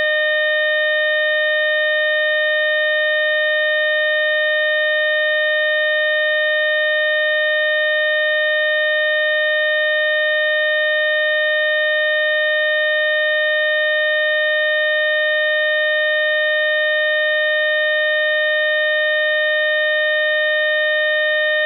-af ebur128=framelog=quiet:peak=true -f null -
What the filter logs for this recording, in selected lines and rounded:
Integrated loudness:
  I:         -15.6 LUFS
  Threshold: -25.6 LUFS
Loudness range:
  LRA:         0.0 LU
  Threshold: -35.6 LUFS
  LRA low:   -15.6 LUFS
  LRA high:  -15.6 LUFS
True peak:
  Peak:      -11.3 dBFS